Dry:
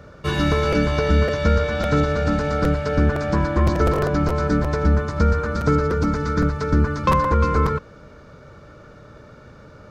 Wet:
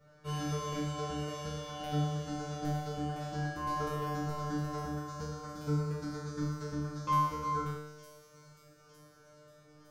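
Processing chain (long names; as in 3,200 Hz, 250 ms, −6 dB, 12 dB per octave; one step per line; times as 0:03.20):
high-shelf EQ 5,400 Hz +10 dB
tuned comb filter 150 Hz, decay 1.1 s, harmonics all, mix 100%
delay with a high-pass on its return 909 ms, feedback 53%, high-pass 5,400 Hz, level −6.5 dB
level +1 dB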